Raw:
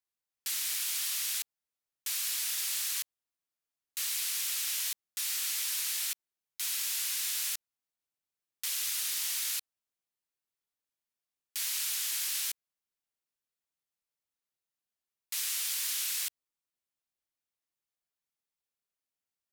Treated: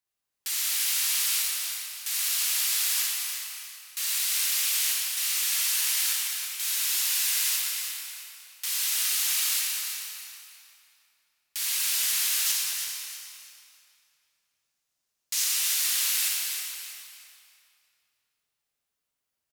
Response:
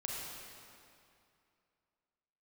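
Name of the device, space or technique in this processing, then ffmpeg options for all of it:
cave: -filter_complex "[0:a]asettb=1/sr,asplit=3[s0][s1][s2];[s0]atrim=end=12.464[s3];[s1]atrim=start=12.46:end=15.44,asetpts=PTS-STARTPTS,afade=t=in:d=0.004:c=qsin,afade=t=out:st=2.976:d=0.004:c=qsin,equalizer=f=6100:t=o:w=1.1:g=7[s4];[s2]atrim=start=15.436[s5];[s3][s4]acrossfade=d=0.004:c1=hsin:c2=qsin[s6];[s6][s5]acrossfade=d=0.004:c1=qsin:c2=hsin,aecho=1:1:351:0.211[s7];[1:a]atrim=start_sample=2205[s8];[s7][s8]afir=irnorm=-1:irlink=0,aecho=1:1:321|642|963:0.355|0.0993|0.0278,volume=2"

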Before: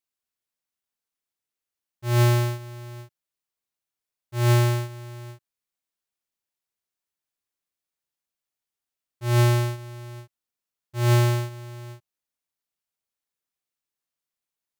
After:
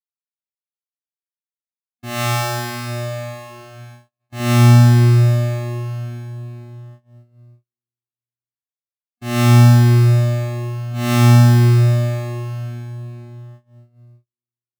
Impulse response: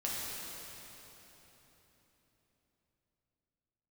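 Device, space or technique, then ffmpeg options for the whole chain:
shimmer-style reverb: -filter_complex "[0:a]asplit=2[s0][s1];[s1]asetrate=88200,aresample=44100,atempo=0.5,volume=0.316[s2];[s0][s2]amix=inputs=2:normalize=0[s3];[1:a]atrim=start_sample=2205[s4];[s3][s4]afir=irnorm=-1:irlink=0,asettb=1/sr,asplit=3[s5][s6][s7];[s5]atrim=end=2.054[s8];[s6]atrim=start=2.05:end=4.4,asetpts=PTS-STARTPTS,afade=t=in:d=0.004:c=qsin,afade=t=out:st=2.346:d=0.004:c=qsin,bandreject=f=60:t=h:w=6,bandreject=f=120:t=h:w=6,bandreject=f=180:t=h:w=6,bandreject=f=240:t=h:w=6,bandreject=f=300:t=h:w=6,bandreject=f=360:t=h:w=6[s9];[s7]atrim=start=4.396[s10];[s8][s9]acrossfade=d=0.004:c1=hsin:c2=qsin[s11];[s11][s10]acrossfade=d=0.004:c1=qsin:c2=hsin,agate=range=0.00631:threshold=0.00708:ratio=16:detection=peak,volume=1.41"

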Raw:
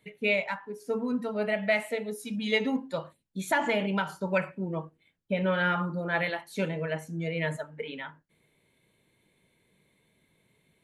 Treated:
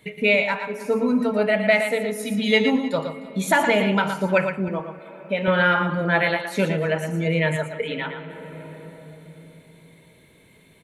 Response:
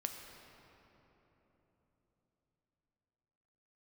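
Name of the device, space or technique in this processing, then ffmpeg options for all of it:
ducked reverb: -filter_complex "[0:a]asplit=3[s0][s1][s2];[1:a]atrim=start_sample=2205[s3];[s1][s3]afir=irnorm=-1:irlink=0[s4];[s2]apad=whole_len=477831[s5];[s4][s5]sidechaincompress=threshold=0.0112:ratio=8:attack=6.8:release=871,volume=1.33[s6];[s0][s6]amix=inputs=2:normalize=0,asettb=1/sr,asplit=3[s7][s8][s9];[s7]atrim=end=4.684[s10];[s8]atrim=start=4.68:end=5.48,asetpts=PTS-STARTPTS,afade=t=in:d=0.004:c=qsin,afade=t=out:st=0.796:d=0.004:c=qsin,highpass=f=460:p=1[s11];[s9]atrim=start=5.476[s12];[s10][s11]acrossfade=d=0.004:c1=hsin:c2=qsin[s13];[s13][s12]acrossfade=d=0.004:c1=qsin:c2=hsin,aecho=1:1:116|306:0.422|0.106,volume=2.11"

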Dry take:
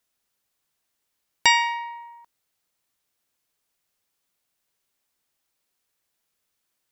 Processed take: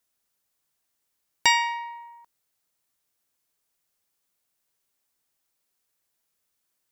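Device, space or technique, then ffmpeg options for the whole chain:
exciter from parts: -filter_complex "[0:a]asplit=2[s0][s1];[s1]highpass=2700,asoftclip=type=tanh:threshold=0.112,highpass=f=4900:p=1,volume=0.447[s2];[s0][s2]amix=inputs=2:normalize=0,volume=0.794"

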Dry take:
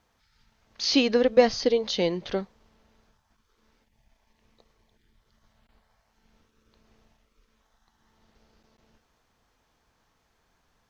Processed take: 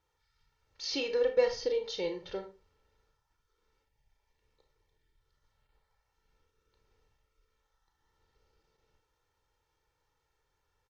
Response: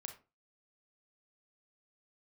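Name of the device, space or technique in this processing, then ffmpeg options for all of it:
microphone above a desk: -filter_complex "[0:a]aecho=1:1:2.2:0.81[s0];[1:a]atrim=start_sample=2205[s1];[s0][s1]afir=irnorm=-1:irlink=0,volume=0.422"

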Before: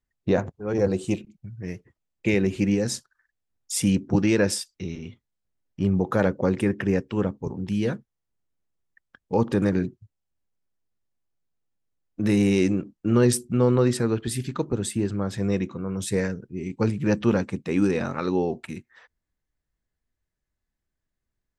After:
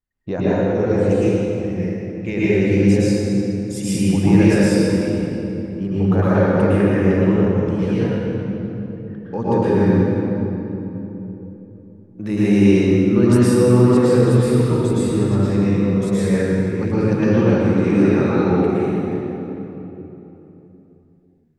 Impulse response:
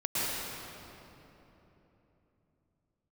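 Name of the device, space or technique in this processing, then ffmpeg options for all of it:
swimming-pool hall: -filter_complex "[0:a]asettb=1/sr,asplit=3[s0][s1][s2];[s0]atrim=end=1.094[s3];[s1]atrim=start=1.09:end=1.67,asetpts=PTS-STARTPTS,afade=t=in:d=0.004:c=qsin,afade=t=out:st=0.576:d=0.004:c=qsin,highshelf=f=4700:g=8[s4];[s2]atrim=start=1.666[s5];[s3][s4]acrossfade=d=0.004:c1=hsin:c2=qsin[s6];[s6][s5]acrossfade=d=0.004:c1=qsin:c2=hsin[s7];[1:a]atrim=start_sample=2205[s8];[s7][s8]afir=irnorm=-1:irlink=0,highshelf=f=4000:g=-6.5,volume=0.75"

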